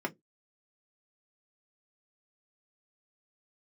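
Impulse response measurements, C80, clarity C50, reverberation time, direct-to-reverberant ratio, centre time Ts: 36.5 dB, 26.5 dB, 0.15 s, 1.0 dB, 6 ms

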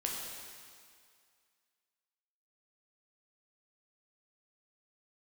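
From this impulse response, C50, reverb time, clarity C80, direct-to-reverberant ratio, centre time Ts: 0.5 dB, 2.1 s, 2.0 dB, -2.0 dB, 101 ms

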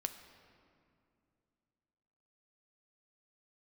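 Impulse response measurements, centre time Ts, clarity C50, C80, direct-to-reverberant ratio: 21 ms, 10.0 dB, 11.0 dB, 7.5 dB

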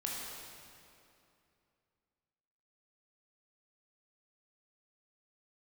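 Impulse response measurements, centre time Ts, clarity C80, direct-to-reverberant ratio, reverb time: 137 ms, 0.5 dB, -3.5 dB, 2.7 s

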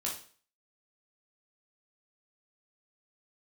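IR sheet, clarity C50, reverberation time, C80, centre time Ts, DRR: 6.0 dB, 0.45 s, 11.5 dB, 29 ms, -3.5 dB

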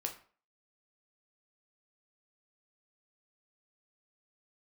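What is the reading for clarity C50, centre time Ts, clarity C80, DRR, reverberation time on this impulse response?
11.0 dB, 14 ms, 15.5 dB, 2.5 dB, 0.45 s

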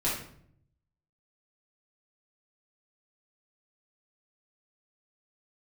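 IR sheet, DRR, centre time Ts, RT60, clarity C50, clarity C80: -9.0 dB, 43 ms, 0.65 s, 3.0 dB, 7.5 dB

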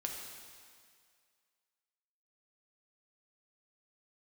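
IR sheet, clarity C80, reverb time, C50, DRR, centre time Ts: 4.0 dB, 2.1 s, 2.5 dB, 0.5 dB, 74 ms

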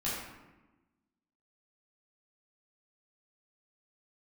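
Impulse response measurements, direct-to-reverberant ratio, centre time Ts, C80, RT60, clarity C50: -10.0 dB, 71 ms, 3.0 dB, 1.1 s, 0.5 dB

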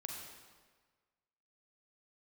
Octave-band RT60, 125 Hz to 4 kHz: 1.5 s, 1.4 s, 1.5 s, 1.5 s, 1.4 s, 1.2 s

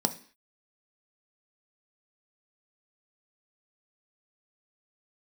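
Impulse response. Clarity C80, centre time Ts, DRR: 20.0 dB, 6 ms, 7.5 dB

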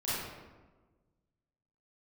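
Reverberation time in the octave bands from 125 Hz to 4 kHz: 1.8 s, 1.6 s, 1.4 s, 1.2 s, 1.0 s, 0.75 s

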